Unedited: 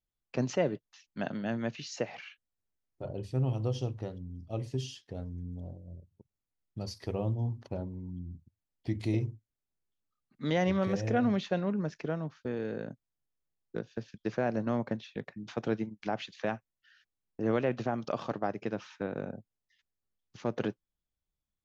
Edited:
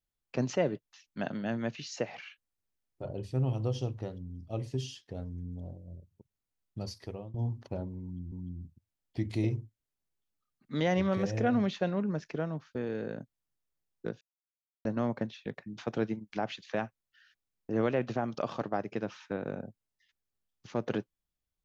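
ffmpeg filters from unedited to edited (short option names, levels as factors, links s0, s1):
-filter_complex "[0:a]asplit=5[s0][s1][s2][s3][s4];[s0]atrim=end=7.34,asetpts=PTS-STARTPTS,afade=t=out:st=6.85:d=0.49:silence=0.0749894[s5];[s1]atrim=start=7.34:end=8.322,asetpts=PTS-STARTPTS,afade=t=in:d=0.004:c=hsin:silence=0.0749894[s6];[s2]atrim=start=8.018:end=13.91,asetpts=PTS-STARTPTS,afade=t=out:st=5.888:d=0.004:c=hsin[s7];[s3]atrim=start=13.91:end=14.55,asetpts=PTS-STARTPTS,volume=0[s8];[s4]atrim=start=14.55,asetpts=PTS-STARTPTS,afade=t=in:d=0.004:c=hsin[s9];[s5][s6]concat=n=2:v=0:a=1[s10];[s7][s8][s9]concat=n=3:v=0:a=1[s11];[s10][s11]acrossfade=d=0.004:c1=hsin:c2=hsin"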